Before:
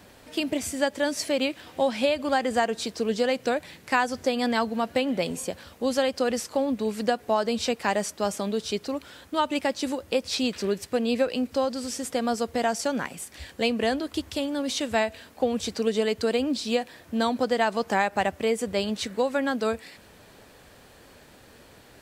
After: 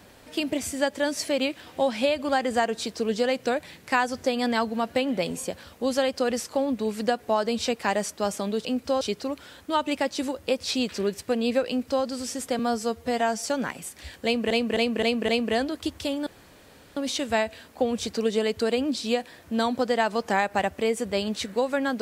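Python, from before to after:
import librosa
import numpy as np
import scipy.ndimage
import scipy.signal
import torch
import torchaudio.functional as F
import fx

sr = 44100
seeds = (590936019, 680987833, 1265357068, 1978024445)

y = fx.edit(x, sr, fx.duplicate(start_s=11.32, length_s=0.36, to_s=8.65),
    fx.stretch_span(start_s=12.23, length_s=0.57, factor=1.5),
    fx.repeat(start_s=13.6, length_s=0.26, count=5),
    fx.insert_room_tone(at_s=14.58, length_s=0.7), tone=tone)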